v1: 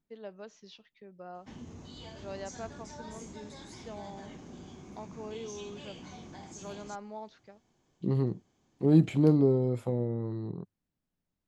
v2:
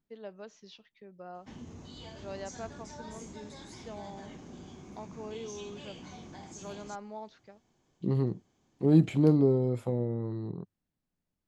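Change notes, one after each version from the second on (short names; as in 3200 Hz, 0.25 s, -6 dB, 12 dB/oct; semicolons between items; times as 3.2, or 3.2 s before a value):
none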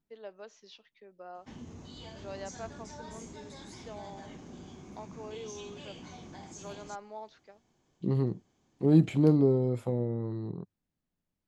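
first voice: add HPF 340 Hz 12 dB/oct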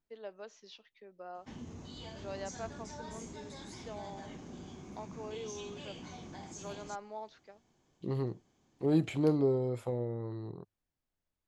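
second voice: add bell 190 Hz -10.5 dB 1.4 oct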